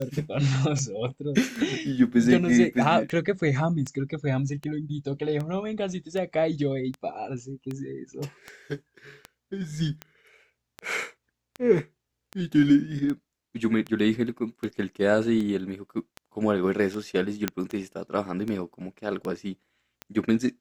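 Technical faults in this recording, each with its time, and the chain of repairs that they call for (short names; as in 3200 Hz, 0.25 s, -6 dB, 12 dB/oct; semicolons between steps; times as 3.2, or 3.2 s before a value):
tick 78 rpm -20 dBFS
17.48 pop -9 dBFS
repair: de-click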